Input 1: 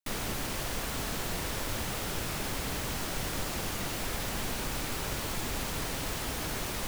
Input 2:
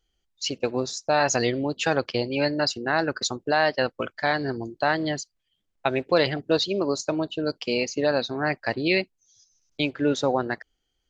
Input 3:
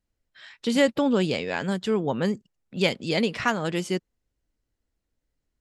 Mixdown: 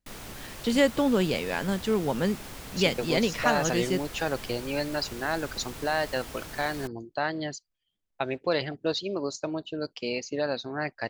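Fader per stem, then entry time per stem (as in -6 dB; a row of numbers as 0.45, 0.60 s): -7.5, -6.0, -1.5 dB; 0.00, 2.35, 0.00 s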